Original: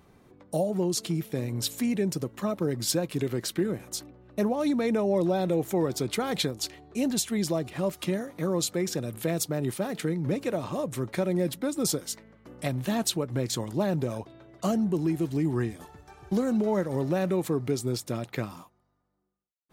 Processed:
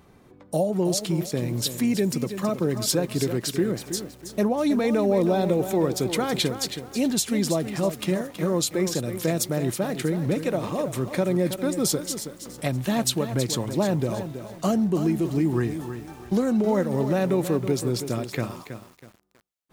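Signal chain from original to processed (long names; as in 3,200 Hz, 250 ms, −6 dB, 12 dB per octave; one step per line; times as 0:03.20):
feedback echo at a low word length 323 ms, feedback 35%, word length 8 bits, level −9.5 dB
level +3.5 dB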